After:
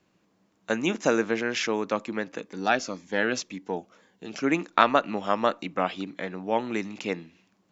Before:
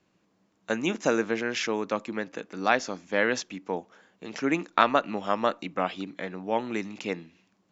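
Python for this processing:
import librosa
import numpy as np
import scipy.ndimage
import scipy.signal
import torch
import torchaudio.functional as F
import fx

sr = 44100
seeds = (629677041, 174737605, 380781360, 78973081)

y = fx.notch_cascade(x, sr, direction='falling', hz=1.9, at=(2.39, 4.43))
y = F.gain(torch.from_numpy(y), 1.5).numpy()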